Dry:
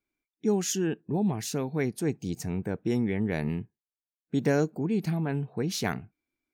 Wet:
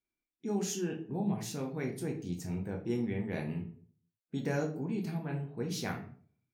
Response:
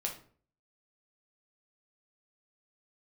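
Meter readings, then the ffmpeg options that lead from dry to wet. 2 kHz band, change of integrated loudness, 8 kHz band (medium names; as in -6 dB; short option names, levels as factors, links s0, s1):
-6.5 dB, -6.5 dB, -7.0 dB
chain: -filter_complex "[1:a]atrim=start_sample=2205[s0];[0:a][s0]afir=irnorm=-1:irlink=0,volume=0.398"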